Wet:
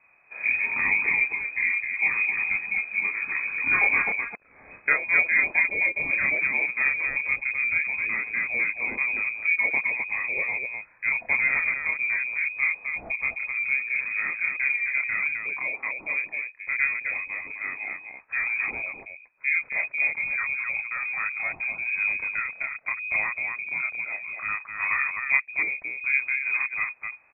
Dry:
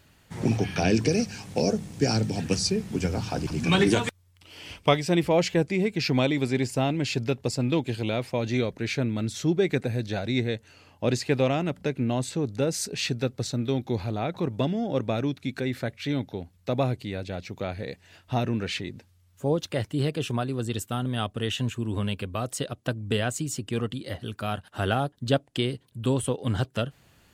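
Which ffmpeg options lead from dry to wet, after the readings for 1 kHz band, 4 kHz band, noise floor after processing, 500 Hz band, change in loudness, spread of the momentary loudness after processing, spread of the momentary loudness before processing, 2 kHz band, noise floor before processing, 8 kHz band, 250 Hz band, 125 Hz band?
−4.0 dB, below −40 dB, −54 dBFS, −17.5 dB, +3.0 dB, 9 LU, 9 LU, +14.5 dB, −61 dBFS, below −40 dB, −22.5 dB, below −25 dB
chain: -af "aecho=1:1:29.15|259.5:0.891|0.631,lowpass=frequency=2200:width_type=q:width=0.5098,lowpass=frequency=2200:width_type=q:width=0.6013,lowpass=frequency=2200:width_type=q:width=0.9,lowpass=frequency=2200:width_type=q:width=2.563,afreqshift=-2600,volume=-3dB"

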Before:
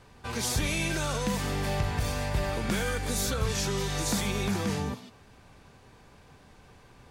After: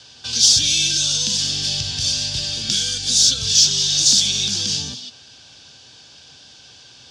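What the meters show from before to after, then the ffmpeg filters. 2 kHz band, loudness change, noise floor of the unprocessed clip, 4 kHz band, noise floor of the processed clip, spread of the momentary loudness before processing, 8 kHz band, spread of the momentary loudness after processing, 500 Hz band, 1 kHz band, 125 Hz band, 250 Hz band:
+1.5 dB, +14.0 dB, −56 dBFS, +20.5 dB, −46 dBFS, 3 LU, +18.0 dB, 9 LU, −9.0 dB, can't be measured, −1.5 dB, −3.5 dB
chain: -filter_complex "[0:a]highpass=100,equalizer=frequency=190:width_type=q:width=4:gain=-7,equalizer=frequency=410:width_type=q:width=4:gain=-5,equalizer=frequency=1100:width_type=q:width=4:gain=-7,equalizer=frequency=1600:width_type=q:width=4:gain=9,equalizer=frequency=2500:width_type=q:width=4:gain=-4,equalizer=frequency=4100:width_type=q:width=4:gain=-8,lowpass=frequency=4700:width=0.5412,lowpass=frequency=4700:width=1.3066,acrossover=split=290|3000[link_01][link_02][link_03];[link_02]acompressor=threshold=-47dB:ratio=4[link_04];[link_01][link_04][link_03]amix=inputs=3:normalize=0,aexciter=amount=13:drive=9.2:freq=3100,volume=2.5dB"

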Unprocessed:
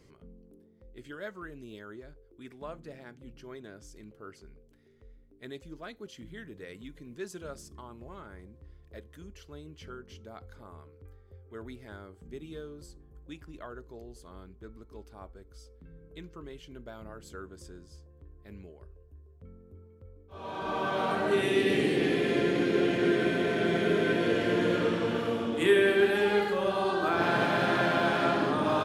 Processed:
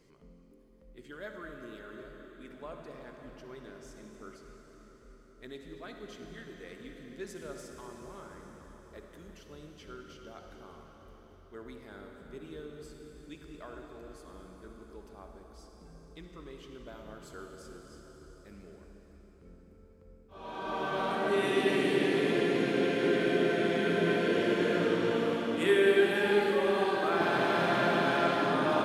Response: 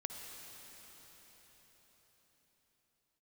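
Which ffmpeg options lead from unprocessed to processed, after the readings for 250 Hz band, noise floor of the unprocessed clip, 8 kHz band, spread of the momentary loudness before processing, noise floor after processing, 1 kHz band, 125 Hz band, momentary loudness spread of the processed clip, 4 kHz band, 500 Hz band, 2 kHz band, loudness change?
−2.0 dB, −58 dBFS, −1.0 dB, 21 LU, −57 dBFS, −1.5 dB, −3.0 dB, 21 LU, −1.0 dB, −1.0 dB, −1.5 dB, −1.0 dB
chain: -filter_complex "[0:a]equalizer=frequency=90:width=2.2:gain=-13[link_01];[1:a]atrim=start_sample=2205[link_02];[link_01][link_02]afir=irnorm=-1:irlink=0"

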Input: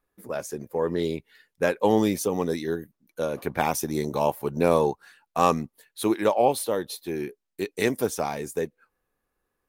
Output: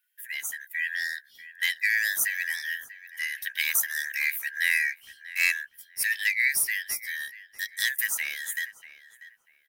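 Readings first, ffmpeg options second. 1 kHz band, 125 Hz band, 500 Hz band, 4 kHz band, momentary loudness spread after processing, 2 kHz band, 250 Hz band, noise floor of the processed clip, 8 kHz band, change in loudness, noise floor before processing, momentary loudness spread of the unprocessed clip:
below −25 dB, below −30 dB, below −35 dB, +5.0 dB, 12 LU, +12.5 dB, below −40 dB, −63 dBFS, +5.5 dB, −0.5 dB, −81 dBFS, 12 LU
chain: -filter_complex "[0:a]afftfilt=real='real(if(lt(b,272),68*(eq(floor(b/68),0)*3+eq(floor(b/68),1)*0+eq(floor(b/68),2)*1+eq(floor(b/68),3)*2)+mod(b,68),b),0)':imag='imag(if(lt(b,272),68*(eq(floor(b/68),0)*3+eq(floor(b/68),1)*0+eq(floor(b/68),2)*1+eq(floor(b/68),3)*2)+mod(b,68),b),0)':win_size=2048:overlap=0.75,aemphasis=mode=production:type=75fm,asplit=2[link_01][link_02];[link_02]adelay=641,lowpass=frequency=2700:poles=1,volume=-15dB,asplit=2[link_03][link_04];[link_04]adelay=641,lowpass=frequency=2700:poles=1,volume=0.24,asplit=2[link_05][link_06];[link_06]adelay=641,lowpass=frequency=2700:poles=1,volume=0.24[link_07];[link_01][link_03][link_05][link_07]amix=inputs=4:normalize=0,volume=-6.5dB"

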